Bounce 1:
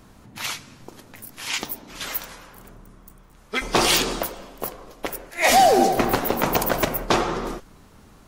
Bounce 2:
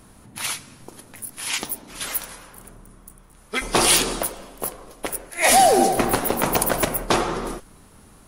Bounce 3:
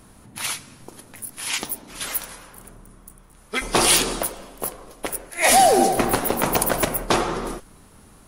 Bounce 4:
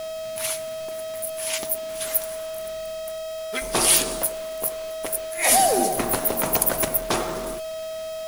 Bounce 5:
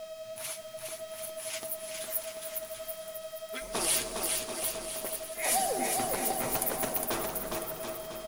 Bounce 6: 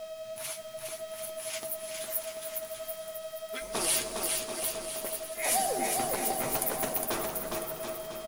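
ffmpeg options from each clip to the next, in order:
ffmpeg -i in.wav -af "equalizer=frequency=10000:width_type=o:width=0.32:gain=14.5" out.wav
ffmpeg -i in.wav -af anull out.wav
ffmpeg -i in.wav -af "highshelf=frequency=8600:gain=10.5,aeval=exprs='val(0)+0.0562*sin(2*PI*640*n/s)':channel_layout=same,acrusher=bits=6:dc=4:mix=0:aa=0.000001,volume=-5dB" out.wav
ffmpeg -i in.wav -filter_complex "[0:a]flanger=delay=4.2:depth=5.3:regen=38:speed=1.6:shape=triangular,asplit=2[link_01][link_02];[link_02]aecho=0:1:410|738|1000|1210|1378:0.631|0.398|0.251|0.158|0.1[link_03];[link_01][link_03]amix=inputs=2:normalize=0,volume=-7dB" out.wav
ffmpeg -i in.wav -filter_complex "[0:a]asplit=2[link_01][link_02];[link_02]adelay=14,volume=-12dB[link_03];[link_01][link_03]amix=inputs=2:normalize=0" out.wav

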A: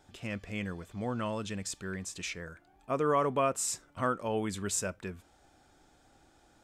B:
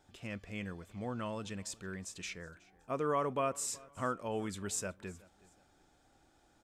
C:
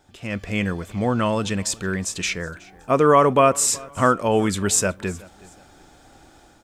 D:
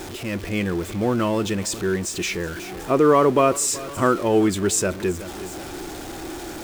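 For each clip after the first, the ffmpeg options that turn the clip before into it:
ffmpeg -i in.wav -af "aecho=1:1:370|740:0.0708|0.0227,volume=-5dB" out.wav
ffmpeg -i in.wav -af "dynaudnorm=framelen=130:gausssize=5:maxgain=9.5dB,volume=8.5dB" out.wav
ffmpeg -i in.wav -af "aeval=exprs='val(0)+0.5*0.0447*sgn(val(0))':channel_layout=same,equalizer=frequency=350:width_type=o:width=0.47:gain=11.5,volume=-4dB" out.wav

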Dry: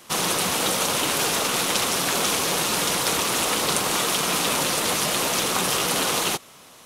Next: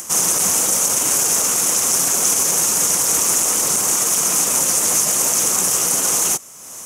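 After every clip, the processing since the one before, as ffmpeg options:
ffmpeg -i in.wav -af "acompressor=mode=upward:threshold=-33dB:ratio=2.5,alimiter=limit=-15dB:level=0:latency=1:release=21,highshelf=frequency=5100:width_type=q:width=3:gain=9" out.wav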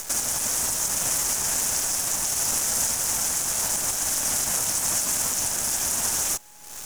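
ffmpeg -i in.wav -af "alimiter=limit=-10dB:level=0:latency=1:release=427,aeval=exprs='val(0)*sin(2*PI*420*n/s)':channel_layout=same,acrusher=bits=6:dc=4:mix=0:aa=0.000001" out.wav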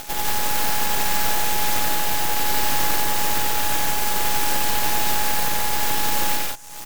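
ffmpeg -i in.wav -filter_complex "[0:a]aeval=exprs='abs(val(0))':channel_layout=same,asplit=2[link_01][link_02];[link_02]aecho=0:1:90.38|145.8|180.8:0.794|0.708|0.708[link_03];[link_01][link_03]amix=inputs=2:normalize=0" out.wav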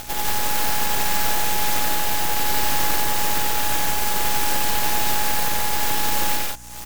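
ffmpeg -i in.wav -af "aeval=exprs='val(0)+0.00631*(sin(2*PI*60*n/s)+sin(2*PI*2*60*n/s)/2+sin(2*PI*3*60*n/s)/3+sin(2*PI*4*60*n/s)/4+sin(2*PI*5*60*n/s)/5)':channel_layout=same" out.wav

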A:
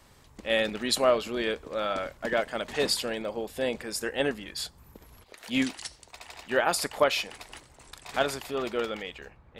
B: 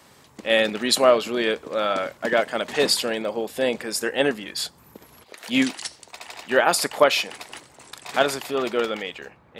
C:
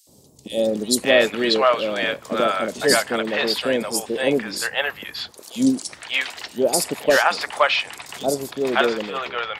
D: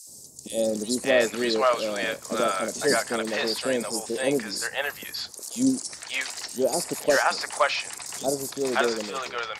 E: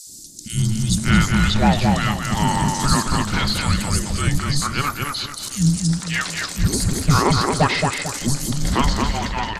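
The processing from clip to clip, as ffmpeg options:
ffmpeg -i in.wav -af "highpass=150,volume=6.5dB" out.wav
ffmpeg -i in.wav -filter_complex "[0:a]asoftclip=type=hard:threshold=-5dB,acrossover=split=640|4500[link_01][link_02][link_03];[link_01]adelay=70[link_04];[link_02]adelay=590[link_05];[link_04][link_05][link_03]amix=inputs=3:normalize=0,volume=4dB" out.wav
ffmpeg -i in.wav -filter_complex "[0:a]aexciter=amount=6.1:drive=7.5:freq=4700,lowpass=9200,acrossover=split=2600[link_01][link_02];[link_02]acompressor=threshold=-26dB:ratio=4:attack=1:release=60[link_03];[link_01][link_03]amix=inputs=2:normalize=0,volume=-4.5dB" out.wav
ffmpeg -i in.wav -filter_complex "[0:a]acontrast=89,asplit=2[link_01][link_02];[link_02]adelay=223,lowpass=frequency=3500:poles=1,volume=-3dB,asplit=2[link_03][link_04];[link_04]adelay=223,lowpass=frequency=3500:poles=1,volume=0.37,asplit=2[link_05][link_06];[link_06]adelay=223,lowpass=frequency=3500:poles=1,volume=0.37,asplit=2[link_07][link_08];[link_08]adelay=223,lowpass=frequency=3500:poles=1,volume=0.37,asplit=2[link_09][link_10];[link_10]adelay=223,lowpass=frequency=3500:poles=1,volume=0.37[link_11];[link_01][link_03][link_05][link_07][link_09][link_11]amix=inputs=6:normalize=0,afreqshift=-430,volume=-1.5dB" out.wav

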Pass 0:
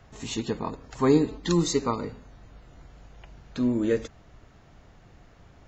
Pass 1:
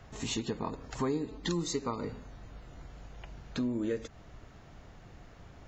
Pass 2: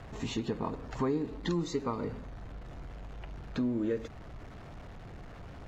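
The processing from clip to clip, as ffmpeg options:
ffmpeg -i in.wav -af "acompressor=threshold=-32dB:ratio=4,volume=1dB" out.wav
ffmpeg -i in.wav -af "aeval=exprs='val(0)+0.5*0.00447*sgn(val(0))':channel_layout=same,aemphasis=mode=reproduction:type=75fm" out.wav

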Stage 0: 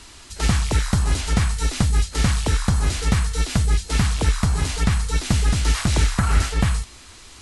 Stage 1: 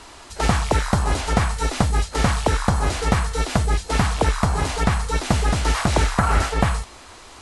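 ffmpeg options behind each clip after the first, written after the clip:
ffmpeg -i in.wav -af "equalizer=frequency=720:width_type=o:width=2.3:gain=12.5,volume=-2.5dB" out.wav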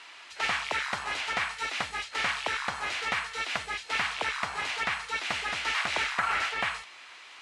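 ffmpeg -i in.wav -af "bandpass=frequency=2400:width_type=q:width=1.7:csg=0,volume=2dB" out.wav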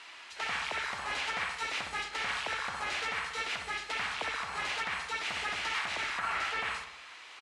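ffmpeg -i in.wav -filter_complex "[0:a]alimiter=limit=-23dB:level=0:latency=1:release=108,asplit=2[link_01][link_02];[link_02]adelay=62,lowpass=frequency=2000:poles=1,volume=-5dB,asplit=2[link_03][link_04];[link_04]adelay=62,lowpass=frequency=2000:poles=1,volume=0.55,asplit=2[link_05][link_06];[link_06]adelay=62,lowpass=frequency=2000:poles=1,volume=0.55,asplit=2[link_07][link_08];[link_08]adelay=62,lowpass=frequency=2000:poles=1,volume=0.55,asplit=2[link_09][link_10];[link_10]adelay=62,lowpass=frequency=2000:poles=1,volume=0.55,asplit=2[link_11][link_12];[link_12]adelay=62,lowpass=frequency=2000:poles=1,volume=0.55,asplit=2[link_13][link_14];[link_14]adelay=62,lowpass=frequency=2000:poles=1,volume=0.55[link_15];[link_01][link_03][link_05][link_07][link_09][link_11][link_13][link_15]amix=inputs=8:normalize=0,volume=-1.5dB" out.wav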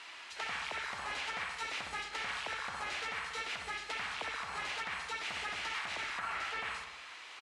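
ffmpeg -i in.wav -af "acompressor=threshold=-39dB:ratio=2" out.wav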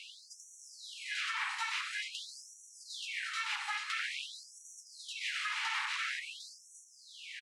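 ffmpeg -i in.wav -af "aecho=1:1:706:0.251,aeval=exprs='0.0501*(cos(1*acos(clip(val(0)/0.0501,-1,1)))-cos(1*PI/2))+0.000447*(cos(8*acos(clip(val(0)/0.0501,-1,1)))-cos(8*PI/2))':channel_layout=same,afftfilt=real='re*gte(b*sr/1024,750*pow(5700/750,0.5+0.5*sin(2*PI*0.48*pts/sr)))':imag='im*gte(b*sr/1024,750*pow(5700/750,0.5+0.5*sin(2*PI*0.48*pts/sr)))':win_size=1024:overlap=0.75,volume=3dB" out.wav

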